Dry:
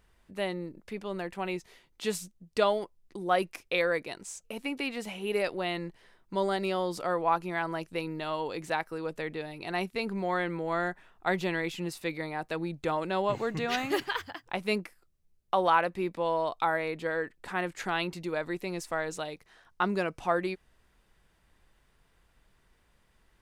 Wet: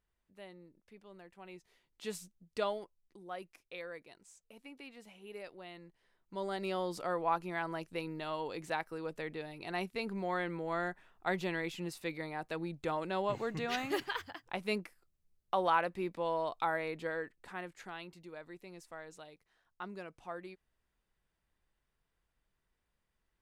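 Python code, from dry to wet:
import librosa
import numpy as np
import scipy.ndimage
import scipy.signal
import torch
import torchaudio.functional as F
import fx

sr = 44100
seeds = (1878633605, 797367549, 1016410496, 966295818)

y = fx.gain(x, sr, db=fx.line((1.37, -19.0), (2.12, -9.0), (2.67, -9.0), (3.31, -17.5), (5.87, -17.5), (6.74, -5.5), (17.04, -5.5), (18.02, -16.0)))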